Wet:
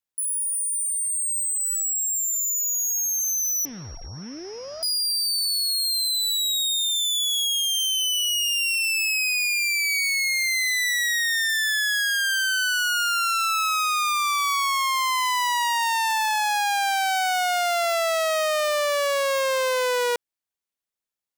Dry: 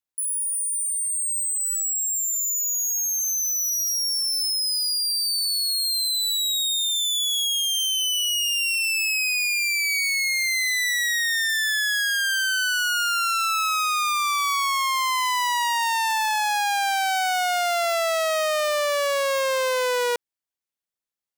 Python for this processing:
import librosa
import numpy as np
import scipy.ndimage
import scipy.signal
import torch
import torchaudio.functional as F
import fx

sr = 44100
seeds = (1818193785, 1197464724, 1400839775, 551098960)

y = fx.pwm(x, sr, carrier_hz=5600.0, at=(3.65, 4.83))